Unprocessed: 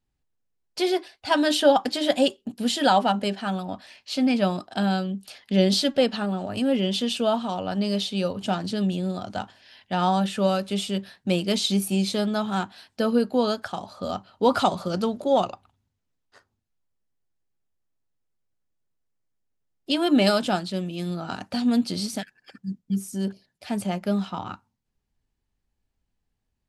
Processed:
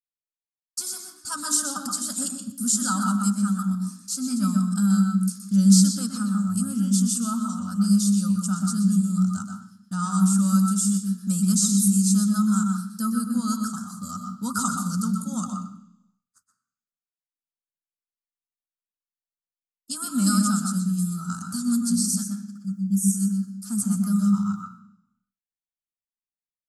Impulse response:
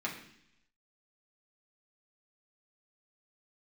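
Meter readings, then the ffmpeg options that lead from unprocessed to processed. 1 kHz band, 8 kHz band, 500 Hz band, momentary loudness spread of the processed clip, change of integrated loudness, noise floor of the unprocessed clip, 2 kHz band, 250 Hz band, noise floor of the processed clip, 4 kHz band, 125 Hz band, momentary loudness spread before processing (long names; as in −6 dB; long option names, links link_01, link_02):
−6.5 dB, +14.0 dB, below −25 dB, 12 LU, +1.5 dB, −79 dBFS, −8.0 dB, +4.0 dB, below −85 dBFS, −7.0 dB, +6.5 dB, 12 LU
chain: -filter_complex "[0:a]aexciter=amount=6.4:drive=5.4:freq=6500,acrossover=split=7900[link_01][link_02];[link_02]acompressor=threshold=-32dB:ratio=4:attack=1:release=60[link_03];[link_01][link_03]amix=inputs=2:normalize=0,firequalizer=gain_entry='entry(130,0);entry(210,8);entry(340,-25);entry(740,-23);entry(1300,7);entry(1900,-23);entry(3100,-18);entry(4800,4);entry(7700,8);entry(12000,2)':delay=0.05:min_phase=1,agate=range=-33dB:threshold=-41dB:ratio=3:detection=peak,asplit=2[link_04][link_05];[1:a]atrim=start_sample=2205,adelay=122[link_06];[link_05][link_06]afir=irnorm=-1:irlink=0,volume=-6.5dB[link_07];[link_04][link_07]amix=inputs=2:normalize=0,volume=-4dB"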